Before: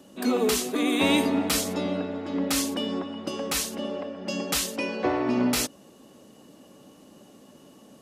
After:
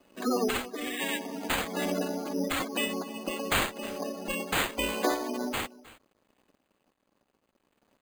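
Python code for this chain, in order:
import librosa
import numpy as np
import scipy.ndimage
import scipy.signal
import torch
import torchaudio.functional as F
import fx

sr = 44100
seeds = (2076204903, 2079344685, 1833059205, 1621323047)

p1 = fx.spec_flatten(x, sr, power=0.48)
p2 = scipy.signal.sosfilt(scipy.signal.butter(4, 170.0, 'highpass', fs=sr, output='sos'), p1)
p3 = fx.spec_gate(p2, sr, threshold_db=-10, keep='strong')
p4 = fx.dynamic_eq(p3, sr, hz=3500.0, q=0.98, threshold_db=-43.0, ratio=4.0, max_db=6)
p5 = fx.rider(p4, sr, range_db=4, speed_s=0.5)
p6 = np.sign(p5) * np.maximum(np.abs(p5) - 10.0 ** (-57.0 / 20.0), 0.0)
p7 = fx.tremolo_random(p6, sr, seeds[0], hz=3.5, depth_pct=55)
p8 = p7 + fx.echo_single(p7, sr, ms=313, db=-19.5, dry=0)
y = np.repeat(p8[::8], 8)[:len(p8)]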